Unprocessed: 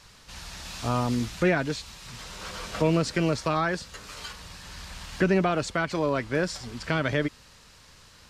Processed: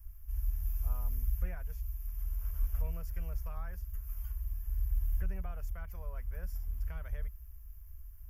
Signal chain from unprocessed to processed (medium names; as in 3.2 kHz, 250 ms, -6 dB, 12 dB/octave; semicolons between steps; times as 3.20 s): inverse Chebyshev band-stop 120–8800 Hz, stop band 40 dB; trim +15.5 dB